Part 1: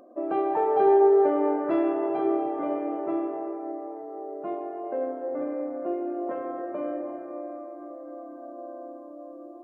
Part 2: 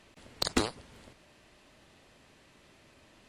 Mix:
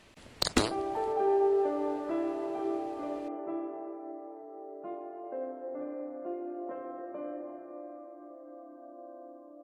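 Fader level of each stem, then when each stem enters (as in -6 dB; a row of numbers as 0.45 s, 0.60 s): -8.0 dB, +1.5 dB; 0.40 s, 0.00 s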